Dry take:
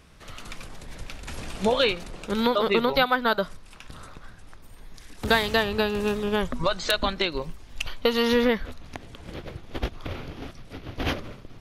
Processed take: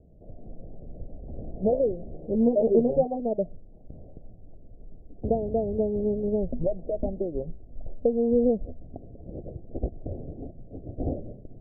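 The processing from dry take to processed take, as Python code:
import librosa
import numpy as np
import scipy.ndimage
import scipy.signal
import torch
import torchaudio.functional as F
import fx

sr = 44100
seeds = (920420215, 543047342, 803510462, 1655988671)

y = scipy.signal.sosfilt(scipy.signal.butter(12, 700.0, 'lowpass', fs=sr, output='sos'), x)
y = fx.doubler(y, sr, ms=13.0, db=-3.5, at=(1.98, 3.2))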